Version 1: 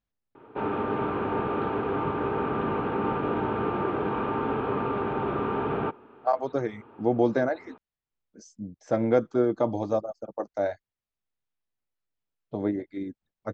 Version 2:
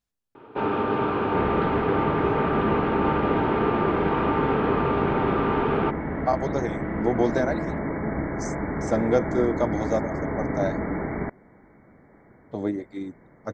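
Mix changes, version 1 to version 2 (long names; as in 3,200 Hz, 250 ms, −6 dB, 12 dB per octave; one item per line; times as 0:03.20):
first sound +3.5 dB
second sound: unmuted
master: remove high-frequency loss of the air 180 metres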